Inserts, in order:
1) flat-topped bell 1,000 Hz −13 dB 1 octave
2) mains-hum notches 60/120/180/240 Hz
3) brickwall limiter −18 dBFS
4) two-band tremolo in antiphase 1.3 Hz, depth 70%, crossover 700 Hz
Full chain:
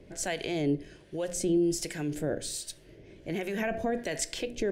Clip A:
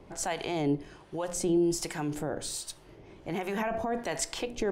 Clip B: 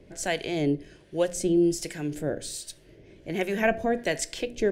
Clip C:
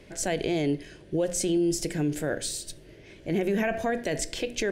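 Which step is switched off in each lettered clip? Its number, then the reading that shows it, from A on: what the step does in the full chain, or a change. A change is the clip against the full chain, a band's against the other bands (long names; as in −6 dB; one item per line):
1, 1 kHz band +5.5 dB
3, average gain reduction 1.5 dB
4, change in crest factor −3.0 dB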